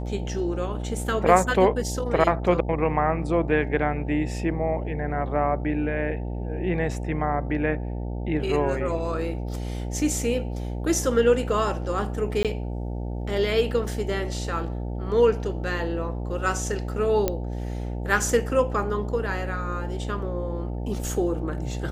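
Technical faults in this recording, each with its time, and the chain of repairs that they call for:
buzz 60 Hz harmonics 15 -30 dBFS
12.43–12.45 s: dropout 17 ms
17.28 s: pop -9 dBFS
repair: de-click; de-hum 60 Hz, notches 15; interpolate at 12.43 s, 17 ms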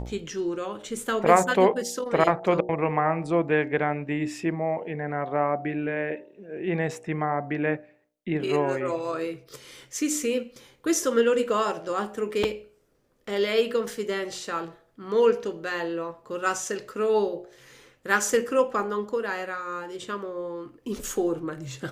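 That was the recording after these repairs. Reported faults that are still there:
nothing left

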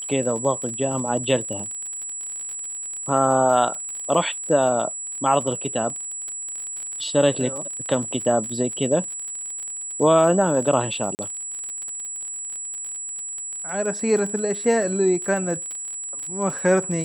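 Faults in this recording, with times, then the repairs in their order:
crackle 39 per s -29 dBFS
whine 7.8 kHz -29 dBFS
11.15–11.19 s: dropout 39 ms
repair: de-click; band-stop 7.8 kHz, Q 30; interpolate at 11.15 s, 39 ms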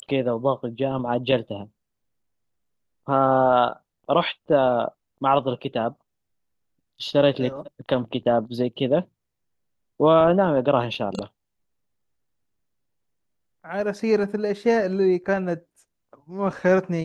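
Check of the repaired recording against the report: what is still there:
whine 7.8 kHz

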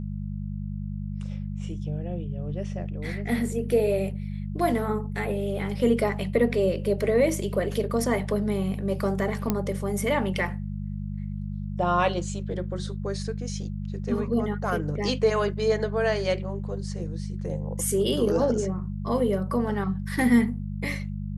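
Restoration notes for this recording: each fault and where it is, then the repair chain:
hum 50 Hz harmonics 4 -32 dBFS
9.50 s: pop -10 dBFS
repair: de-click; de-hum 50 Hz, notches 4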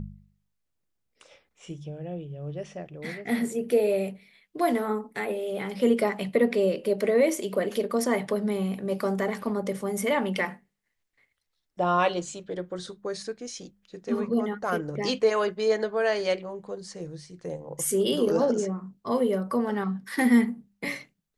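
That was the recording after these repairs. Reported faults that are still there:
nothing left

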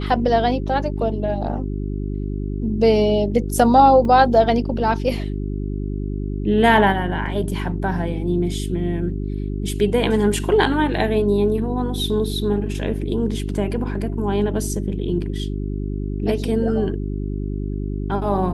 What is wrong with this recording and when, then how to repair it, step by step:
hum 50 Hz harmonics 8 -25 dBFS
4.05 s: dropout 2 ms
7.26 s: dropout 3.1 ms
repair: de-hum 50 Hz, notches 8; interpolate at 4.05 s, 2 ms; interpolate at 7.26 s, 3.1 ms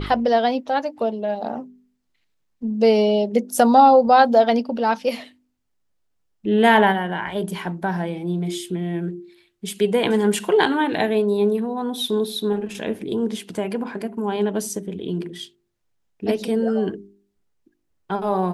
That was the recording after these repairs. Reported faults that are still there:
nothing left

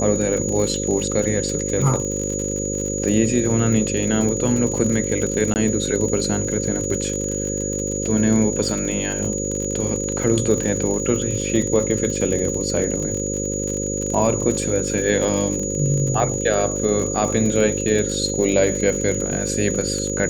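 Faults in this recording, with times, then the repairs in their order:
buzz 50 Hz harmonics 11 -26 dBFS
crackle 51 per s -24 dBFS
whine 6.8 kHz -26 dBFS
5.54–5.56 s: dropout 19 ms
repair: de-click; band-stop 6.8 kHz, Q 30; de-hum 50 Hz, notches 11; interpolate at 5.54 s, 19 ms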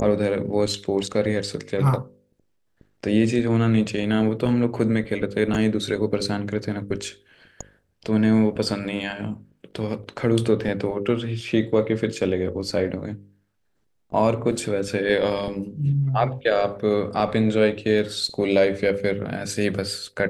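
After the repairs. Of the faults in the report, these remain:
nothing left

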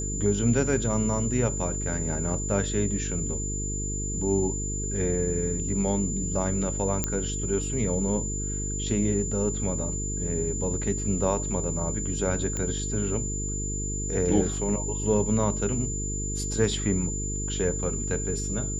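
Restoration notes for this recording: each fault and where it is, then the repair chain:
buzz 50 Hz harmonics 9 -32 dBFS
whine 7.1 kHz -32 dBFS
7.04 s: pop -10 dBFS
12.57 s: pop -18 dBFS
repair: de-click; band-stop 7.1 kHz, Q 30; de-hum 50 Hz, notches 9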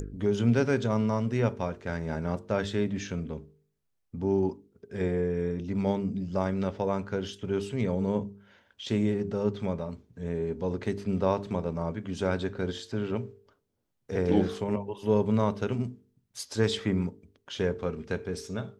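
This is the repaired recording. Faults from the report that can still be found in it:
nothing left

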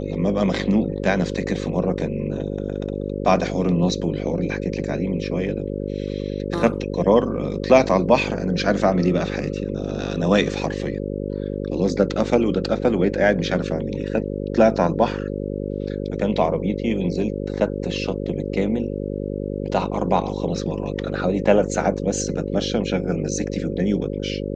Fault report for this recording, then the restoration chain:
buzz 50 Hz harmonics 11 -27 dBFS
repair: de-hum 50 Hz, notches 11

